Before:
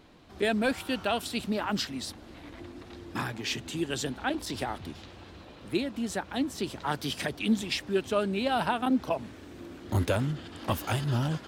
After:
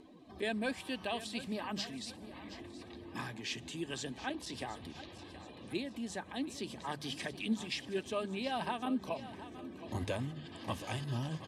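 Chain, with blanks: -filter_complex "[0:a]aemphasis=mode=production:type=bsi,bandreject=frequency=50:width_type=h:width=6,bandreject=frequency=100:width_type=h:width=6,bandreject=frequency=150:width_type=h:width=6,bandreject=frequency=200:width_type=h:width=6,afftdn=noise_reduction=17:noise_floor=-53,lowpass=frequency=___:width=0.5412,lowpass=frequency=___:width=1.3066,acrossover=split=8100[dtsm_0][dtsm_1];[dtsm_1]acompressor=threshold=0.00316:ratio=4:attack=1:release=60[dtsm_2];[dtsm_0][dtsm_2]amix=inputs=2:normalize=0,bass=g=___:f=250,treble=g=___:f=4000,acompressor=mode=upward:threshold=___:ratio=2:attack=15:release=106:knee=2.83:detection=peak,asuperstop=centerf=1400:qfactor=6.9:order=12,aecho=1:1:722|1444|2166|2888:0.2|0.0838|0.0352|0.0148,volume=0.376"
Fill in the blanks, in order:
11000, 11000, 9, -6, 0.02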